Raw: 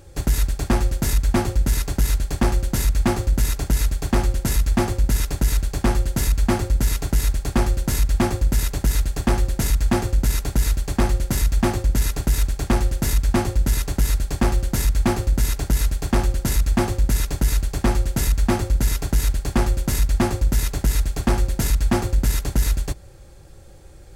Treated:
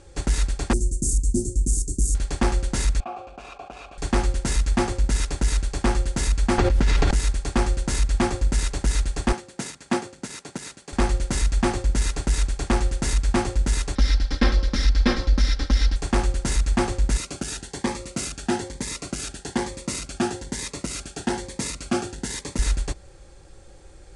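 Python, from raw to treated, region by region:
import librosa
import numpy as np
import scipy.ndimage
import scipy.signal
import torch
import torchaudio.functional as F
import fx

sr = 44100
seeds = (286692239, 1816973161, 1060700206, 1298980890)

y = fx.chain(x, sr, fx.ellip_bandstop(low_hz=350.0, high_hz=7100.0, order=3, stop_db=60),
    fx.high_shelf(hz=2800.0, db=8.0), at=(0.73, 2.15))
y = fx.chain(y, sr, fx.vowel_filter(vowel='a'),
    fx.high_shelf(hz=5200.0, db=-7.5),
    fx.env_flatten(amount_pct=50), at=(3.0, 3.98))
y = fx.chain(y, sr, fx.lowpass(hz=3700.0, slope=12),
    fx.mod_noise(seeds[0], snr_db=33),
    fx.env_flatten(amount_pct=100), at=(6.58, 7.11))
y = fx.chain(y, sr, fx.highpass(hz=140.0, slope=24),
    fx.upward_expand(threshold_db=-36.0, expansion=1.5), at=(9.32, 10.93))
y = fx.chain(y, sr, fx.lower_of_two(delay_ms=0.55),
    fx.high_shelf_res(hz=6300.0, db=-9.5, q=3.0),
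    fx.comb(ms=3.8, depth=0.68), at=(13.95, 15.96))
y = fx.chain(y, sr, fx.highpass(hz=150.0, slope=12),
    fx.notch_cascade(direction='rising', hz=1.1), at=(17.17, 22.59))
y = scipy.signal.sosfilt(scipy.signal.butter(12, 10000.0, 'lowpass', fs=sr, output='sos'), y)
y = fx.peak_eq(y, sr, hz=110.0, db=-7.0, octaves=1.7)
y = fx.notch(y, sr, hz=630.0, q=12.0)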